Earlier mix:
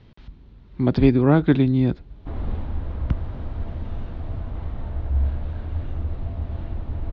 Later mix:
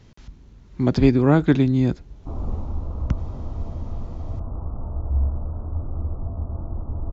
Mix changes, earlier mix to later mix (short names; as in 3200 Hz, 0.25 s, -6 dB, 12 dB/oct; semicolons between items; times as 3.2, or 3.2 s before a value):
background: add steep low-pass 1300 Hz 72 dB/oct; master: remove Chebyshev low-pass 3900 Hz, order 3